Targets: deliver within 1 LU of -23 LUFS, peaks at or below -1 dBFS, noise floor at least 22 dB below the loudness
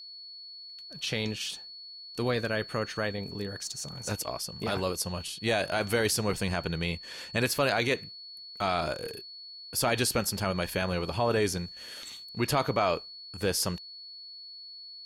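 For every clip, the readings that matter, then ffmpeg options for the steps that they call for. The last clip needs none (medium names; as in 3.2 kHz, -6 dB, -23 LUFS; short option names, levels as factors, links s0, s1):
steady tone 4.4 kHz; tone level -43 dBFS; loudness -30.5 LUFS; peak level -14.5 dBFS; loudness target -23.0 LUFS
-> -af "bandreject=f=4400:w=30"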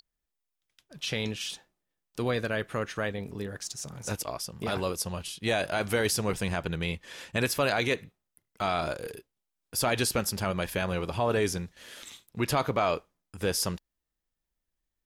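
steady tone not found; loudness -30.5 LUFS; peak level -14.5 dBFS; loudness target -23.0 LUFS
-> -af "volume=2.37"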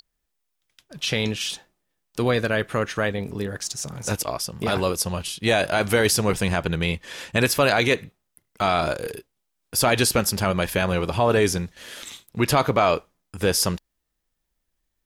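loudness -23.0 LUFS; peak level -7.5 dBFS; noise floor -77 dBFS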